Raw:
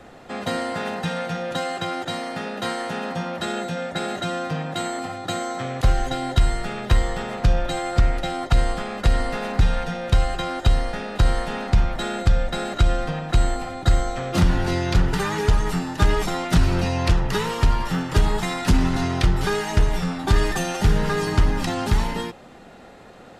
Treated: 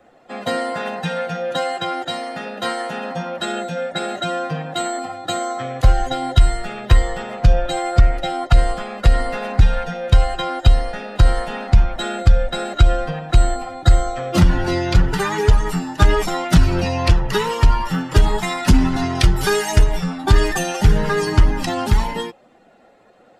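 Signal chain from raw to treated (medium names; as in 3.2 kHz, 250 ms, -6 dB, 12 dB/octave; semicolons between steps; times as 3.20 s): expander on every frequency bin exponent 1.5; 19.15–19.84 s: treble shelf 6 kHz +11 dB; trim +7 dB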